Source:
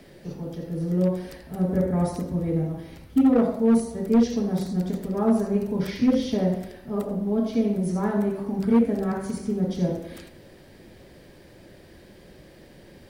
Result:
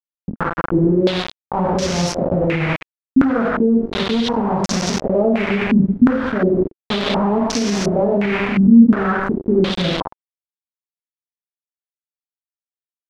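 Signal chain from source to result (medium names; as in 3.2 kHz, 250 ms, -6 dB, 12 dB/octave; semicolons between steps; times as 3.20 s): hum notches 60/120/180/240/300/360/420/480/540 Hz; bit crusher 5-bit; 7.57–8.59 s: doubling 30 ms -4 dB; loudness maximiser +20 dB; step-sequenced low-pass 2.8 Hz 230–5800 Hz; trim -11.5 dB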